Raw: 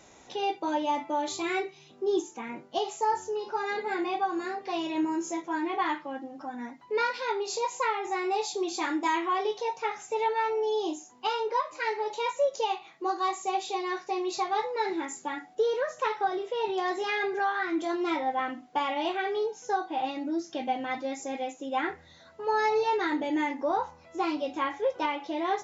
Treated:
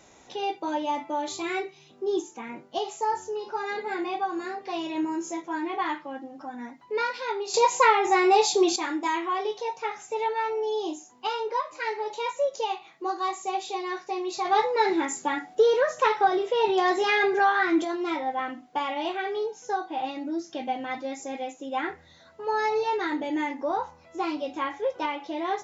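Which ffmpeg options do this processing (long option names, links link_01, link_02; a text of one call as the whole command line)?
ffmpeg -i in.wav -filter_complex "[0:a]asplit=3[link_01][link_02][link_03];[link_01]afade=type=out:start_time=14.44:duration=0.02[link_04];[link_02]acontrast=70,afade=type=in:start_time=14.44:duration=0.02,afade=type=out:start_time=17.83:duration=0.02[link_05];[link_03]afade=type=in:start_time=17.83:duration=0.02[link_06];[link_04][link_05][link_06]amix=inputs=3:normalize=0,asplit=3[link_07][link_08][link_09];[link_07]atrim=end=7.542[link_10];[link_08]atrim=start=7.538:end=8.762,asetpts=PTS-STARTPTS,volume=9.5dB[link_11];[link_09]atrim=start=8.758[link_12];[link_10][link_11]acrossfade=duration=0.004:curve1=hsin:curve2=hsin[link_13];[link_13][link_12]acrossfade=duration=0.004:curve1=hsin:curve2=hsin" out.wav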